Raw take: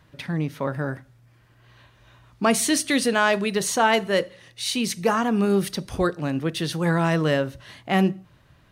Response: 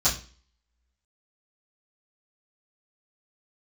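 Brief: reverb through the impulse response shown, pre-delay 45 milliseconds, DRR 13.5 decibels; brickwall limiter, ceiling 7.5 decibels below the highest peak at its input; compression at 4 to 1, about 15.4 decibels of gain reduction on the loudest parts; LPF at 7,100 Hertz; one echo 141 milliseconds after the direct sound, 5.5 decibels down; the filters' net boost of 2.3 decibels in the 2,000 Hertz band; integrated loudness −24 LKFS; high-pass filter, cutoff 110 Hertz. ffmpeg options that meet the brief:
-filter_complex "[0:a]highpass=110,lowpass=7100,equalizer=frequency=2000:width_type=o:gain=3,acompressor=threshold=-33dB:ratio=4,alimiter=level_in=2dB:limit=-24dB:level=0:latency=1,volume=-2dB,aecho=1:1:141:0.531,asplit=2[link_01][link_02];[1:a]atrim=start_sample=2205,adelay=45[link_03];[link_02][link_03]afir=irnorm=-1:irlink=0,volume=-25.5dB[link_04];[link_01][link_04]amix=inputs=2:normalize=0,volume=11.5dB"

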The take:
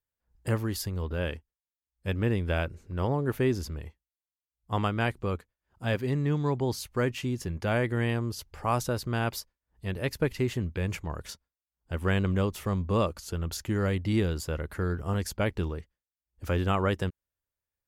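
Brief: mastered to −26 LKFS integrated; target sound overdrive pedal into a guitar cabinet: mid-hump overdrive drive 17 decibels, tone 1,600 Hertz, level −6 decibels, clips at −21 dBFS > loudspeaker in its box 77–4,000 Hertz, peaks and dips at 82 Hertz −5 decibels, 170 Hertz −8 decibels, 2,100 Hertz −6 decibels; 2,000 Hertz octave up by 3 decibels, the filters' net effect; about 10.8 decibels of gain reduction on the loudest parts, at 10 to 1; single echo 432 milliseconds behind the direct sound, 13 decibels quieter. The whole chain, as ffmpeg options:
ffmpeg -i in.wav -filter_complex "[0:a]equalizer=frequency=2000:width_type=o:gain=6.5,acompressor=threshold=-32dB:ratio=10,aecho=1:1:432:0.224,asplit=2[link_01][link_02];[link_02]highpass=frequency=720:poles=1,volume=17dB,asoftclip=type=tanh:threshold=-21dB[link_03];[link_01][link_03]amix=inputs=2:normalize=0,lowpass=frequency=1600:poles=1,volume=-6dB,highpass=77,equalizer=frequency=82:width_type=q:width=4:gain=-5,equalizer=frequency=170:width_type=q:width=4:gain=-8,equalizer=frequency=2100:width_type=q:width=4:gain=-6,lowpass=frequency=4000:width=0.5412,lowpass=frequency=4000:width=1.3066,volume=11dB" out.wav

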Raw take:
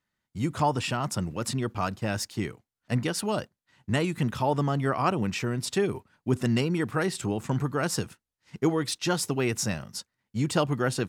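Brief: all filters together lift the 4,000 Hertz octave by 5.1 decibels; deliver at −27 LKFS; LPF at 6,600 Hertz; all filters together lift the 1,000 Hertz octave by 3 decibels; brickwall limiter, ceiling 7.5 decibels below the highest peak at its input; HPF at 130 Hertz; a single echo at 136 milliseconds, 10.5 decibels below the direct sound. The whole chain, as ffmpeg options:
ffmpeg -i in.wav -af "highpass=130,lowpass=6600,equalizer=frequency=1000:width_type=o:gain=3.5,equalizer=frequency=4000:width_type=o:gain=7.5,alimiter=limit=-15dB:level=0:latency=1,aecho=1:1:136:0.299,volume=1.5dB" out.wav

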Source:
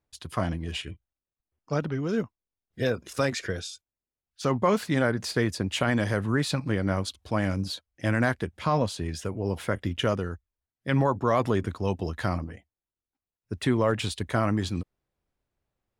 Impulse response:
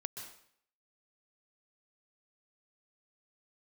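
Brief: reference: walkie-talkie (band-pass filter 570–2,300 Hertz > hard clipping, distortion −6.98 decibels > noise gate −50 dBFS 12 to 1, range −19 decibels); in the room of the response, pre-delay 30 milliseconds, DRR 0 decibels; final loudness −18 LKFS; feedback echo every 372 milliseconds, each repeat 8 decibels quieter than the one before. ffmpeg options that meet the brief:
-filter_complex "[0:a]aecho=1:1:372|744|1116|1488|1860:0.398|0.159|0.0637|0.0255|0.0102,asplit=2[link_01][link_02];[1:a]atrim=start_sample=2205,adelay=30[link_03];[link_02][link_03]afir=irnorm=-1:irlink=0,volume=1.5dB[link_04];[link_01][link_04]amix=inputs=2:normalize=0,highpass=570,lowpass=2300,asoftclip=type=hard:threshold=-28dB,agate=range=-19dB:threshold=-50dB:ratio=12,volume=15.5dB"

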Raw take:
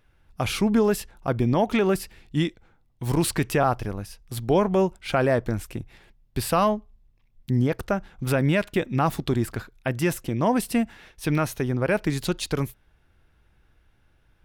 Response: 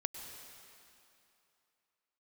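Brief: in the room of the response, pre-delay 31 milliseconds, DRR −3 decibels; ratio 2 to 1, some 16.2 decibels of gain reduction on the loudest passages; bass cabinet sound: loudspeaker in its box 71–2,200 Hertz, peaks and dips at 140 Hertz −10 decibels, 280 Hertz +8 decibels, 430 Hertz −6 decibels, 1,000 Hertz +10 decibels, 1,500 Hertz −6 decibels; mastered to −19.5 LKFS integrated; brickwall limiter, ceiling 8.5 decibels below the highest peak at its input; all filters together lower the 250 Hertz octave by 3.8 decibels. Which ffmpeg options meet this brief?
-filter_complex "[0:a]equalizer=frequency=250:width_type=o:gain=-7.5,acompressor=threshold=-50dB:ratio=2,alimiter=level_in=10dB:limit=-24dB:level=0:latency=1,volume=-10dB,asplit=2[link_01][link_02];[1:a]atrim=start_sample=2205,adelay=31[link_03];[link_02][link_03]afir=irnorm=-1:irlink=0,volume=3dB[link_04];[link_01][link_04]amix=inputs=2:normalize=0,highpass=frequency=71:width=0.5412,highpass=frequency=71:width=1.3066,equalizer=frequency=140:width_type=q:width=4:gain=-10,equalizer=frequency=280:width_type=q:width=4:gain=8,equalizer=frequency=430:width_type=q:width=4:gain=-6,equalizer=frequency=1000:width_type=q:width=4:gain=10,equalizer=frequency=1500:width_type=q:width=4:gain=-6,lowpass=frequency=2200:width=0.5412,lowpass=frequency=2200:width=1.3066,volume=22dB"

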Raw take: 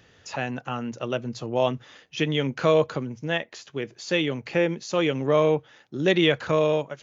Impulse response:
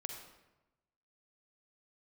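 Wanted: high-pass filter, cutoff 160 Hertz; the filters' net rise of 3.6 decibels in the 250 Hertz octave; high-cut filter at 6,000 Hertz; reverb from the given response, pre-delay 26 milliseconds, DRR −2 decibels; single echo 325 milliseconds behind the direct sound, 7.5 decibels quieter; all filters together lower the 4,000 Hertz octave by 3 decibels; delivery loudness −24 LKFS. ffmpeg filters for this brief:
-filter_complex "[0:a]highpass=160,lowpass=6000,equalizer=frequency=250:width_type=o:gain=6,equalizer=frequency=4000:width_type=o:gain=-3.5,aecho=1:1:325:0.422,asplit=2[link_01][link_02];[1:a]atrim=start_sample=2205,adelay=26[link_03];[link_02][link_03]afir=irnorm=-1:irlink=0,volume=3.5dB[link_04];[link_01][link_04]amix=inputs=2:normalize=0,volume=-5dB"

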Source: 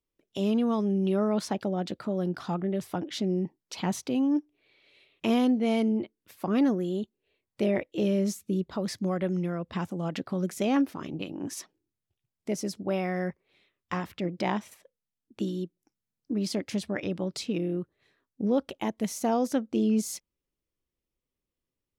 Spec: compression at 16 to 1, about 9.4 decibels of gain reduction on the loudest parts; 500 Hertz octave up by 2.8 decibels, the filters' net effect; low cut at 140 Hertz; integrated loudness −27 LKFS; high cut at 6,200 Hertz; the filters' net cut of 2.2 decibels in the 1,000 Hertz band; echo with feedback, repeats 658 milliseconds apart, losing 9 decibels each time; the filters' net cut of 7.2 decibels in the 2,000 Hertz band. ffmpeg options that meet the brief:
ffmpeg -i in.wav -af "highpass=140,lowpass=6200,equalizer=frequency=500:width_type=o:gain=5,equalizer=frequency=1000:width_type=o:gain=-4.5,equalizer=frequency=2000:width_type=o:gain=-8,acompressor=threshold=-28dB:ratio=16,aecho=1:1:658|1316|1974|2632:0.355|0.124|0.0435|0.0152,volume=8dB" out.wav

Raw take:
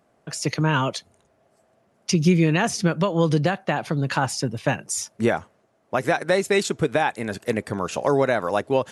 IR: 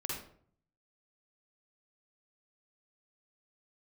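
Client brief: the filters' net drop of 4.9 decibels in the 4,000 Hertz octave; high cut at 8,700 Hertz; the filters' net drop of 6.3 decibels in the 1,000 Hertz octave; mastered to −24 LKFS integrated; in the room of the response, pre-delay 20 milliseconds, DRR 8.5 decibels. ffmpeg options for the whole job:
-filter_complex "[0:a]lowpass=8700,equalizer=frequency=1000:width_type=o:gain=-8.5,equalizer=frequency=4000:width_type=o:gain=-6,asplit=2[link_01][link_02];[1:a]atrim=start_sample=2205,adelay=20[link_03];[link_02][link_03]afir=irnorm=-1:irlink=0,volume=-10.5dB[link_04];[link_01][link_04]amix=inputs=2:normalize=0"

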